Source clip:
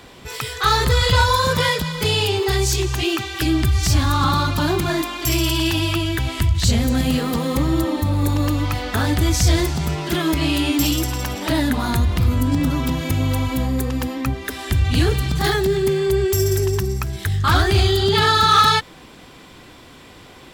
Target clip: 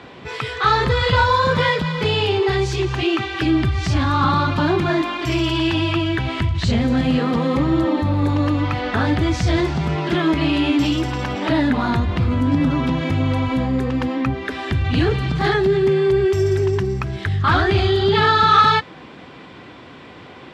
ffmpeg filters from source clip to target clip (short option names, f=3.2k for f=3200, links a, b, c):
-filter_complex "[0:a]asplit=2[a][b];[b]alimiter=limit=-18dB:level=0:latency=1,volume=-3dB[c];[a][c]amix=inputs=2:normalize=0,highpass=100,lowpass=2.9k" -ar 32000 -c:a libvorbis -b:a 64k